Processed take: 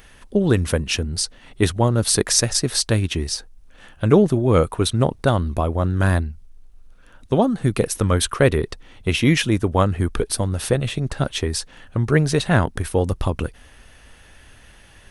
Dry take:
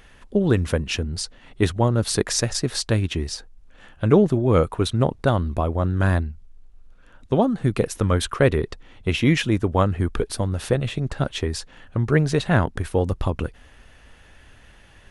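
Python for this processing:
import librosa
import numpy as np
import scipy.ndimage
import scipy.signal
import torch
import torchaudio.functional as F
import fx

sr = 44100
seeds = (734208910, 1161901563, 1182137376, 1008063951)

y = fx.high_shelf(x, sr, hz=6300.0, db=10.5)
y = fx.notch(y, sr, hz=7100.0, q=15.0)
y = y * librosa.db_to_amplitude(1.5)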